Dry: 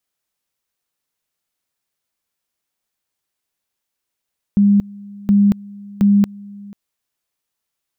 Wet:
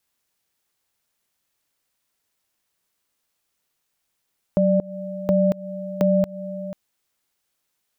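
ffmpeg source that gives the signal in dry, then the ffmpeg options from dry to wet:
-f lavfi -i "aevalsrc='pow(10,(-8.5-23.5*gte(mod(t,0.72),0.23))/20)*sin(2*PI*202*t)':duration=2.16:sample_rate=44100"
-filter_complex "[0:a]asplit=2[link_01][link_02];[link_02]alimiter=limit=-17dB:level=0:latency=1:release=122,volume=2dB[link_03];[link_01][link_03]amix=inputs=2:normalize=0,acompressor=threshold=-19dB:ratio=2,aeval=exprs='val(0)*sin(2*PI*390*n/s)':channel_layout=same"

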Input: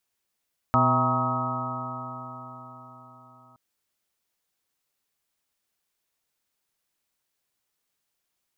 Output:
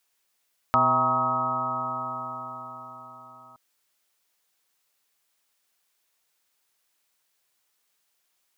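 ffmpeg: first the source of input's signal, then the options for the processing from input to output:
-f lavfi -i "aevalsrc='0.0668*pow(10,-3*t/4.65)*sin(2*PI*124.23*t)+0.0562*pow(10,-3*t/4.65)*sin(2*PI*249.83*t)+0.0106*pow(10,-3*t/4.65)*sin(2*PI*378.14*t)+0.0106*pow(10,-3*t/4.65)*sin(2*PI*510.47*t)+0.0447*pow(10,-3*t/4.65)*sin(2*PI*648.04*t)+0.0422*pow(10,-3*t/4.65)*sin(2*PI*792*t)+0.0531*pow(10,-3*t/4.65)*sin(2*PI*943.41*t)+0.0398*pow(10,-3*t/4.65)*sin(2*PI*1103.22*t)+0.1*pow(10,-3*t/4.65)*sin(2*PI*1272.29*t)':duration=2.82:sample_rate=44100"
-filter_complex "[0:a]lowshelf=frequency=350:gain=-11,asplit=2[link_01][link_02];[link_02]acompressor=threshold=-33dB:ratio=6,volume=1.5dB[link_03];[link_01][link_03]amix=inputs=2:normalize=0"

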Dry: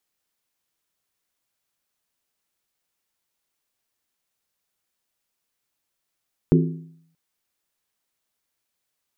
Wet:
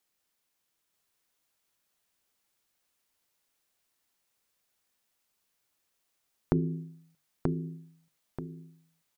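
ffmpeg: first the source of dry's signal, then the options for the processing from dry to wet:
-f lavfi -i "aevalsrc='0.251*pow(10,-3*t/0.69)*sin(2*PI*163*t)+0.178*pow(10,-3*t/0.547)*sin(2*PI*259.8*t)+0.126*pow(10,-3*t/0.472)*sin(2*PI*348.2*t)+0.0891*pow(10,-3*t/0.455)*sin(2*PI*374.2*t)+0.0631*pow(10,-3*t/0.424)*sin(2*PI*432.4*t)':duration=0.63:sample_rate=44100"
-filter_complex "[0:a]bandreject=frequency=50:width_type=h:width=6,bandreject=frequency=100:width_type=h:width=6,bandreject=frequency=150:width_type=h:width=6,acompressor=threshold=-23dB:ratio=6,asplit=2[link_01][link_02];[link_02]aecho=0:1:933|1866|2799|3732:0.668|0.227|0.0773|0.0263[link_03];[link_01][link_03]amix=inputs=2:normalize=0"

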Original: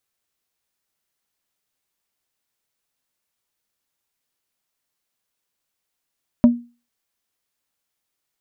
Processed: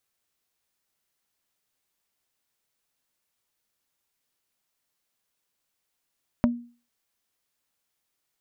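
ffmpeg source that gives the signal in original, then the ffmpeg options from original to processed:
-f lavfi -i "aevalsrc='0.596*pow(10,-3*t/0.32)*sin(2*PI*239*t)+0.168*pow(10,-3*t/0.107)*sin(2*PI*597.5*t)+0.0473*pow(10,-3*t/0.061)*sin(2*PI*956*t)+0.0133*pow(10,-3*t/0.046)*sin(2*PI*1195*t)+0.00376*pow(10,-3*t/0.034)*sin(2*PI*1553.5*t)':duration=0.45:sample_rate=44100"
-af "acompressor=threshold=-22dB:ratio=4"

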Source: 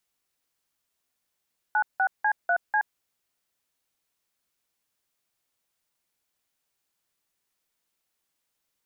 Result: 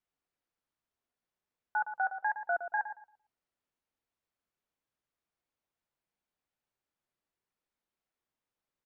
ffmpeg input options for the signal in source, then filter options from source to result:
-f lavfi -i "aevalsrc='0.075*clip(min(mod(t,0.247),0.074-mod(t,0.247))/0.002,0,1)*(eq(floor(t/0.247),0)*(sin(2*PI*852*mod(t,0.247))+sin(2*PI*1477*mod(t,0.247)))+eq(floor(t/0.247),1)*(sin(2*PI*770*mod(t,0.247))+sin(2*PI*1477*mod(t,0.247)))+eq(floor(t/0.247),2)*(sin(2*PI*852*mod(t,0.247))+sin(2*PI*1633*mod(t,0.247)))+eq(floor(t/0.247),3)*(sin(2*PI*697*mod(t,0.247))+sin(2*PI*1477*mod(t,0.247)))+eq(floor(t/0.247),4)*(sin(2*PI*852*mod(t,0.247))+sin(2*PI*1633*mod(t,0.247))))':duration=1.235:sample_rate=44100"
-filter_complex "[0:a]lowpass=frequency=1400:poles=1,flanger=delay=0.8:depth=5:regen=-70:speed=1.2:shape=triangular,asplit=2[link_01][link_02];[link_02]adelay=114,lowpass=frequency=1100:poles=1,volume=-7.5dB,asplit=2[link_03][link_04];[link_04]adelay=114,lowpass=frequency=1100:poles=1,volume=0.3,asplit=2[link_05][link_06];[link_06]adelay=114,lowpass=frequency=1100:poles=1,volume=0.3,asplit=2[link_07][link_08];[link_08]adelay=114,lowpass=frequency=1100:poles=1,volume=0.3[link_09];[link_01][link_03][link_05][link_07][link_09]amix=inputs=5:normalize=0"

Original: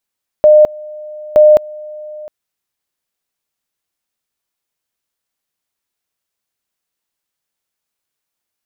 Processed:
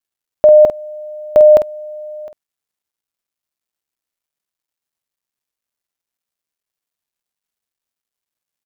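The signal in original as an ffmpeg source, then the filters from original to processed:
-f lavfi -i "aevalsrc='pow(10,(-2.5-23.5*gte(mod(t,0.92),0.21))/20)*sin(2*PI*607*t)':duration=1.84:sample_rate=44100"
-filter_complex "[0:a]acrusher=bits=11:mix=0:aa=0.000001,asplit=2[link_01][link_02];[link_02]adelay=49,volume=-9dB[link_03];[link_01][link_03]amix=inputs=2:normalize=0"

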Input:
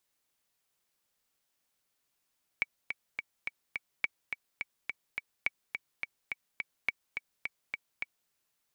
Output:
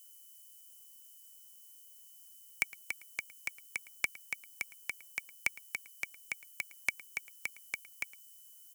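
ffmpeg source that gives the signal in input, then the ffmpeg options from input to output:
-f lavfi -i "aevalsrc='pow(10,(-14.5-6.5*gte(mod(t,5*60/211),60/211))/20)*sin(2*PI*2270*mod(t,60/211))*exp(-6.91*mod(t,60/211)/0.03)':duration=5.68:sample_rate=44100"
-filter_complex "[0:a]aeval=exprs='val(0)+0.000447*sin(2*PI*3000*n/s)':channel_layout=same,acrossover=split=160|2000[link_01][link_02][link_03];[link_03]aexciter=amount=10.5:drive=6.4:freq=5400[link_04];[link_01][link_02][link_04]amix=inputs=3:normalize=0,asplit=2[link_05][link_06];[link_06]adelay=110.8,volume=-20dB,highshelf=frequency=4000:gain=-2.49[link_07];[link_05][link_07]amix=inputs=2:normalize=0"

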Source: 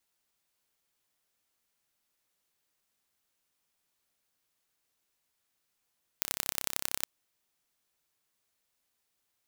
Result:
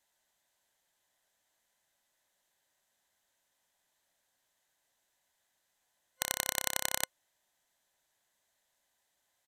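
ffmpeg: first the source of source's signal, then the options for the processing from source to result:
-f lavfi -i "aevalsrc='0.841*eq(mod(n,1332),0)*(0.5+0.5*eq(mod(n,3996),0))':duration=0.82:sample_rate=44100"
-af "superequalizer=8b=2.51:9b=2.24:11b=2.24:13b=1.58:15b=1.58,aresample=32000,aresample=44100"

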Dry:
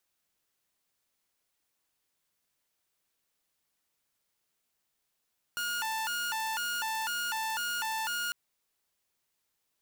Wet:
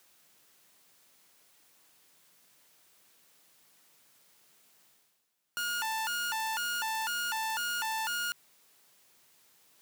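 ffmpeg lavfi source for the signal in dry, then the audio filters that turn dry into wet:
-f lavfi -i "aevalsrc='0.0376*(2*mod((1157.5*t+272.5/2*(0.5-abs(mod(2*t,1)-0.5))),1)-1)':duration=2.75:sample_rate=44100"
-af "areverse,acompressor=mode=upward:threshold=-49dB:ratio=2.5,areverse,highpass=frequency=110:width=0.5412,highpass=frequency=110:width=1.3066"

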